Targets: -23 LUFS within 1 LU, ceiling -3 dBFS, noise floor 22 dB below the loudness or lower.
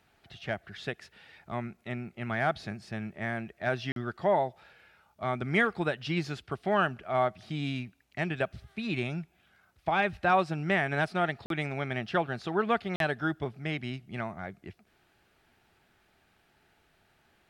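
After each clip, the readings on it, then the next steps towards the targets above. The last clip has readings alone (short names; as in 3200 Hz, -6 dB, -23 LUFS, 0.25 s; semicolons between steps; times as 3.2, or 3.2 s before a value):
dropouts 3; longest dropout 42 ms; loudness -31.5 LUFS; peak -14.0 dBFS; loudness target -23.0 LUFS
-> interpolate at 3.92/11.46/12.96, 42 ms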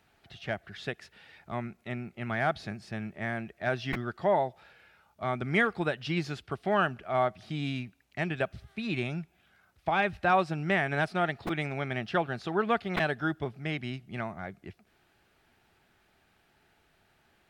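dropouts 0; loudness -31.5 LUFS; peak -14.0 dBFS; loudness target -23.0 LUFS
-> gain +8.5 dB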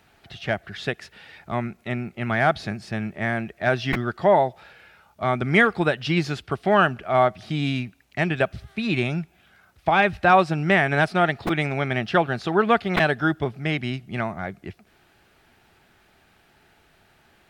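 loudness -23.0 LUFS; peak -5.5 dBFS; noise floor -60 dBFS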